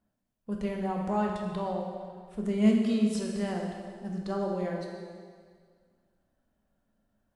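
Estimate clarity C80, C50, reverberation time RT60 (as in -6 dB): 4.0 dB, 2.0 dB, 1.9 s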